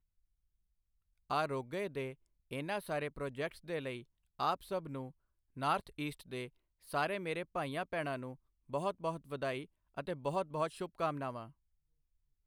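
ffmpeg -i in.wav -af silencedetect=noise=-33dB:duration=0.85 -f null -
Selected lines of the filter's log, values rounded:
silence_start: 0.00
silence_end: 1.31 | silence_duration: 1.31
silence_start: 11.30
silence_end: 12.47 | silence_duration: 1.16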